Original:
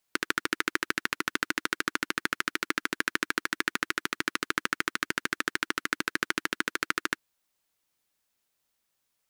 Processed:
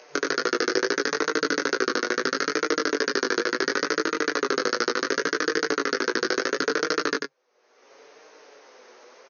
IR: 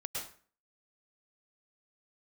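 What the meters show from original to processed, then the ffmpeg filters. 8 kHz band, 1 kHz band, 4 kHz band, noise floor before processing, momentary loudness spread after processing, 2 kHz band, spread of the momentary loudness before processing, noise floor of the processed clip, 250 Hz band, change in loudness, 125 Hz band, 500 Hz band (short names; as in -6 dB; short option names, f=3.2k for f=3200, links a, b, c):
+5.5 dB, +5.5 dB, +5.5 dB, -79 dBFS, 1 LU, +3.5 dB, 2 LU, -61 dBFS, +8.0 dB, +6.0 dB, +0.5 dB, +17.0 dB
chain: -filter_complex "[0:a]acrossover=split=290 2400:gain=0.0631 1 0.1[a][b][c];[a][b][c]amix=inputs=3:normalize=0,aeval=exprs='0.355*(cos(1*acos(clip(val(0)/0.355,-1,1)))-cos(1*PI/2))+0.178*(cos(5*acos(clip(val(0)/0.355,-1,1)))-cos(5*PI/2))':c=same,equalizer=f=460:t=o:w=0.71:g=14.5,acompressor=mode=upward:threshold=-30dB:ratio=2.5,apsyclip=10.5dB,aexciter=amount=4.4:drive=3.2:freq=4.6k,flanger=delay=16:depth=6.1:speed=2.3,afftfilt=real='re*between(b*sr/4096,150,6600)':imag='im*between(b*sr/4096,150,6600)':win_size=4096:overlap=0.75,flanger=delay=6.3:depth=2.1:regen=36:speed=0.72:shape=triangular,aecho=1:1:93:0.596,volume=-5.5dB"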